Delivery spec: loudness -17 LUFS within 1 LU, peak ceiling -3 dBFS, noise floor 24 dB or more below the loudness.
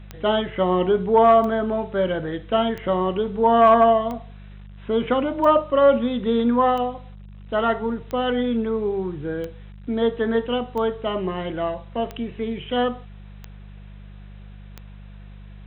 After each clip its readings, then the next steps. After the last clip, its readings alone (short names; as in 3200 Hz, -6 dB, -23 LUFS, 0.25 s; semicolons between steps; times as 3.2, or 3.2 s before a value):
clicks 12; hum 50 Hz; harmonics up to 200 Hz; hum level -38 dBFS; loudness -21.5 LUFS; peak -6.5 dBFS; loudness target -17.0 LUFS
-> de-click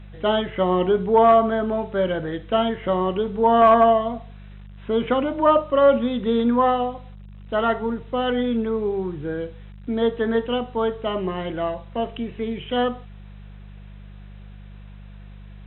clicks 0; hum 50 Hz; harmonics up to 200 Hz; hum level -38 dBFS
-> de-hum 50 Hz, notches 4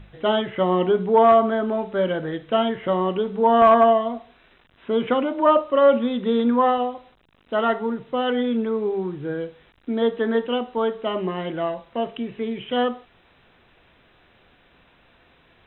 hum none; loudness -21.5 LUFS; peak -5.5 dBFS; loudness target -17.0 LUFS
-> gain +4.5 dB; limiter -3 dBFS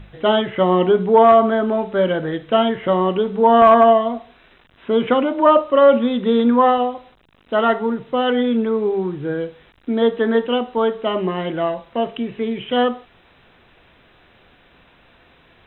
loudness -17.0 LUFS; peak -3.0 dBFS; noise floor -54 dBFS